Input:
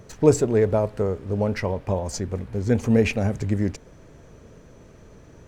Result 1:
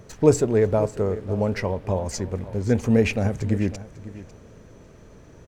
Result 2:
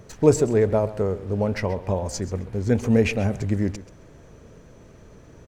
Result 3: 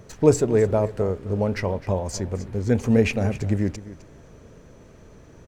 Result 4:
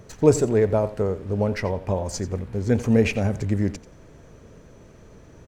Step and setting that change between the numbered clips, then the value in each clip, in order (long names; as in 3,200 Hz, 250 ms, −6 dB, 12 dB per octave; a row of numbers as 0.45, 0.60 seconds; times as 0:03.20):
repeating echo, delay time: 548, 132, 258, 88 milliseconds